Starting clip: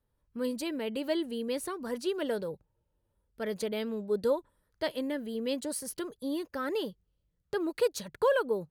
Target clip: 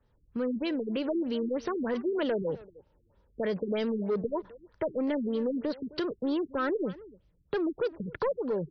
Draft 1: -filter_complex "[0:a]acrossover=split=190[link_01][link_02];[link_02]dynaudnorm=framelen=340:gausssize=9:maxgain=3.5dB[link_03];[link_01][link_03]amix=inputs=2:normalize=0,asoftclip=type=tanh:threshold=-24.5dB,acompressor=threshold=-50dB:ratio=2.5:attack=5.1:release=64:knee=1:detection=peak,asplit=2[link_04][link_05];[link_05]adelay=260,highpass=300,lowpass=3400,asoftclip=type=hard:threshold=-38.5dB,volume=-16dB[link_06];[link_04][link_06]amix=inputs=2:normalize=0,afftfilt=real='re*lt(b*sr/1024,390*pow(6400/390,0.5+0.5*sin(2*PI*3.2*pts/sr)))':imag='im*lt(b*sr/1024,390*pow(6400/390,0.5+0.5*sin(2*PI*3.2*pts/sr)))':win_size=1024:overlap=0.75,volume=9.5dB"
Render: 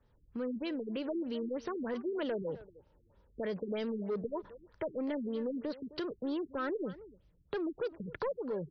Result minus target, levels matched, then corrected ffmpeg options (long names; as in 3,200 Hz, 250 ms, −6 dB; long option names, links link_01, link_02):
downward compressor: peak gain reduction +6 dB
-filter_complex "[0:a]acrossover=split=190[link_01][link_02];[link_02]dynaudnorm=framelen=340:gausssize=9:maxgain=3.5dB[link_03];[link_01][link_03]amix=inputs=2:normalize=0,asoftclip=type=tanh:threshold=-24.5dB,acompressor=threshold=-40dB:ratio=2.5:attack=5.1:release=64:knee=1:detection=peak,asplit=2[link_04][link_05];[link_05]adelay=260,highpass=300,lowpass=3400,asoftclip=type=hard:threshold=-38.5dB,volume=-16dB[link_06];[link_04][link_06]amix=inputs=2:normalize=0,afftfilt=real='re*lt(b*sr/1024,390*pow(6400/390,0.5+0.5*sin(2*PI*3.2*pts/sr)))':imag='im*lt(b*sr/1024,390*pow(6400/390,0.5+0.5*sin(2*PI*3.2*pts/sr)))':win_size=1024:overlap=0.75,volume=9.5dB"